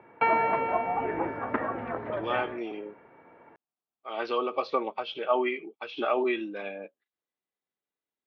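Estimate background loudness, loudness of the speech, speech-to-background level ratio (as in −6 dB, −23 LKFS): −29.0 LKFS, −31.0 LKFS, −2.0 dB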